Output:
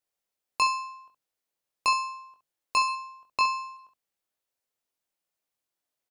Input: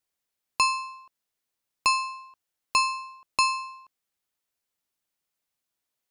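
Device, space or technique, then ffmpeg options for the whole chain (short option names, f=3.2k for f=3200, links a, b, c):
slapback doubling: -filter_complex "[0:a]asettb=1/sr,asplit=3[a][b][c];[a]atrim=end=2.884[d];[b]atrim=start=2.88:end=3.77,asetpts=PTS-STARTPTS,afade=t=in:d=0.004:c=qsin,afade=t=out:st=0.886:d=0.004:c=qsin,acrossover=split=6300[e][f];[f]acompressor=threshold=-48dB:ratio=4:attack=1:release=60[g];[e][g]amix=inputs=2:normalize=0[h];[c]atrim=start=3.766[i];[d][h]acrossfade=d=0.004:c1=hsin:c2=qsin[j];[j][i]acrossfade=d=0.004:c1=qsin:c2=hsin,asplit=3[k][l][m];[l]adelay=21,volume=-4.5dB[n];[m]adelay=68,volume=-10dB[o];[k][n][o]amix=inputs=3:normalize=0,equalizer=f=560:t=o:w=1.3:g=5,bandreject=f=50:t=h:w=6,bandreject=f=100:t=h:w=6,bandreject=f=150:t=h:w=6,bandreject=f=200:t=h:w=6,bandreject=f=250:t=h:w=6,volume=-5dB"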